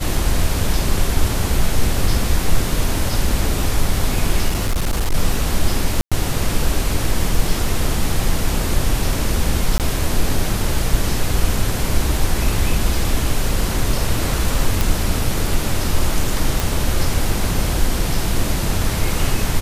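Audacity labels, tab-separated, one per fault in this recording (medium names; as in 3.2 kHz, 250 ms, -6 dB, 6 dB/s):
4.480000	5.150000	clipped -14 dBFS
6.010000	6.120000	dropout 106 ms
9.780000	9.800000	dropout 18 ms
14.810000	14.810000	pop
16.600000	16.600000	pop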